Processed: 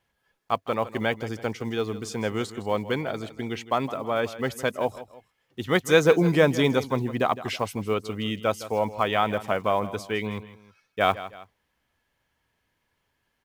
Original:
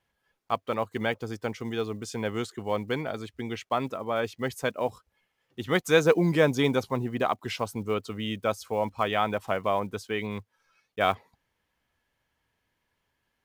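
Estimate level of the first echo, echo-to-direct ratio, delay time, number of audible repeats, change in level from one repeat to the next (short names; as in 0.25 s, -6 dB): -15.0 dB, -14.5 dB, 0.161 s, 2, -8.0 dB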